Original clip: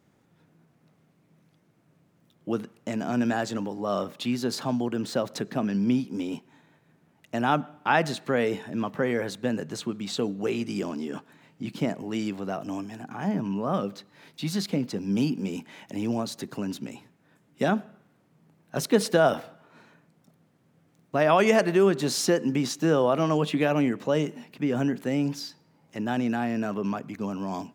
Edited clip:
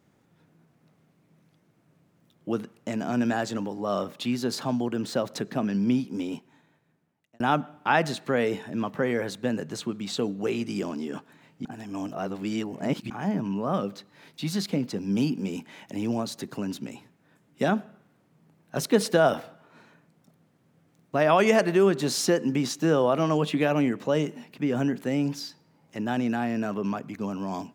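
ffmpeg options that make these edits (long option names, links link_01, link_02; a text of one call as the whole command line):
ffmpeg -i in.wav -filter_complex "[0:a]asplit=4[link_01][link_02][link_03][link_04];[link_01]atrim=end=7.4,asetpts=PTS-STARTPTS,afade=type=out:start_time=6.24:duration=1.16[link_05];[link_02]atrim=start=7.4:end=11.652,asetpts=PTS-STARTPTS,afade=type=in:duration=0.004:curve=hsin[link_06];[link_03]atrim=start=11.648:end=13.102,asetpts=PTS-STARTPTS,areverse[link_07];[link_04]atrim=start=13.098[link_08];[link_05][link_06]concat=n=2:v=0:a=1[link_09];[link_09][link_07]acrossfade=duration=0.004:curve1=hsin:curve2=hsin[link_10];[link_10][link_08]acrossfade=duration=0.004:curve1=hsin:curve2=hsin" out.wav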